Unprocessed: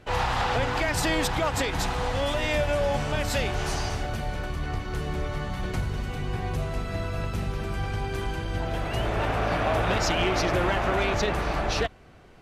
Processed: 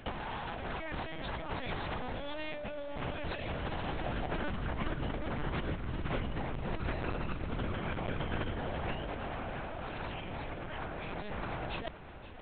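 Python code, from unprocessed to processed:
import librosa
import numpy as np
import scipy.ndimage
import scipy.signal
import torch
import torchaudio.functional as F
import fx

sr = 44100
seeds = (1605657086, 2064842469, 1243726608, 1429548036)

p1 = fx.lpc_vocoder(x, sr, seeds[0], excitation='pitch_kept', order=8)
p2 = fx.over_compress(p1, sr, threshold_db=-33.0, ratio=-1.0)
p3 = p2 + fx.echo_feedback(p2, sr, ms=523, feedback_pct=58, wet_db=-16, dry=0)
y = p3 * 10.0 ** (-4.5 / 20.0)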